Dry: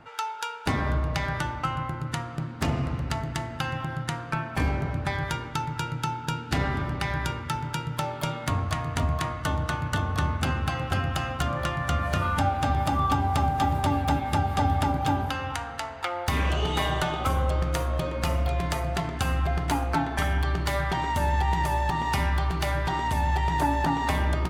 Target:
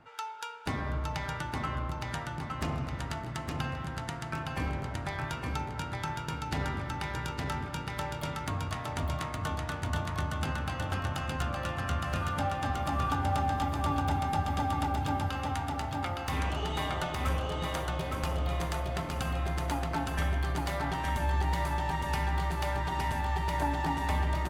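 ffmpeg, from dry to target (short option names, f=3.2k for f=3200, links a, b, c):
-af "aecho=1:1:864|1728|2592|3456|4320|5184:0.708|0.326|0.15|0.0689|0.0317|0.0146,volume=-7.5dB"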